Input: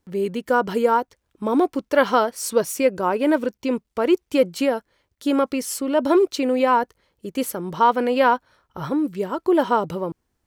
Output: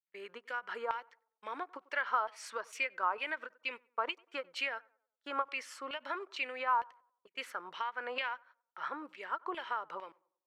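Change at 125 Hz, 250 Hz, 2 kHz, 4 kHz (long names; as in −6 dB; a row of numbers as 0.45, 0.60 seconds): below −35 dB, −31.5 dB, −8.0 dB, −9.5 dB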